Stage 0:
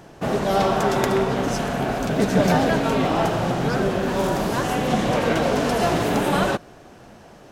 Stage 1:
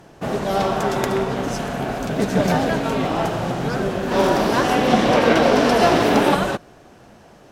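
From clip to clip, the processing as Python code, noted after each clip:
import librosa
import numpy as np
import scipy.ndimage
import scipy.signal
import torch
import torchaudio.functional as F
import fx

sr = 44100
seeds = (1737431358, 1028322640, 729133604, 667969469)

y = fx.spec_box(x, sr, start_s=4.12, length_s=2.22, low_hz=210.0, high_hz=6100.0, gain_db=6)
y = fx.cheby_harmonics(y, sr, harmonics=(7,), levels_db=(-34,), full_scale_db=-2.5)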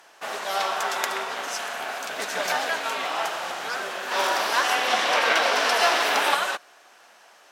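y = scipy.signal.sosfilt(scipy.signal.butter(2, 1100.0, 'highpass', fs=sr, output='sos'), x)
y = y * librosa.db_to_amplitude(2.0)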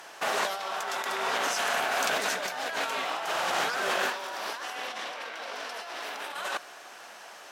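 y = fx.low_shelf(x, sr, hz=66.0, db=10.0)
y = fx.over_compress(y, sr, threshold_db=-33.0, ratio=-1.0)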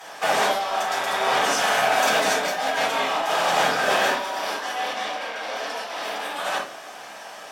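y = fx.room_shoebox(x, sr, seeds[0], volume_m3=210.0, walls='furnished', distance_m=6.2)
y = y * librosa.db_to_amplitude(-3.5)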